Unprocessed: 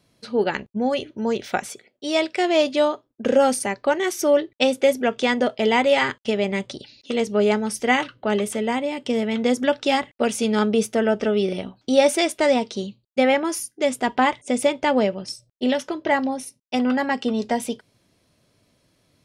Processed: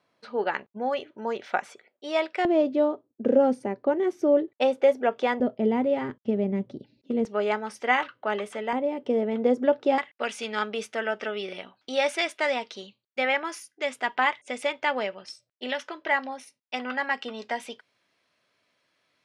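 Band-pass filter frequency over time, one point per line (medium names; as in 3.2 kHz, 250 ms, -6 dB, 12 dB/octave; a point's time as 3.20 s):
band-pass filter, Q 0.92
1.1 kHz
from 2.45 s 320 Hz
from 4.48 s 800 Hz
from 5.40 s 220 Hz
from 7.25 s 1.2 kHz
from 8.73 s 480 Hz
from 9.98 s 1.8 kHz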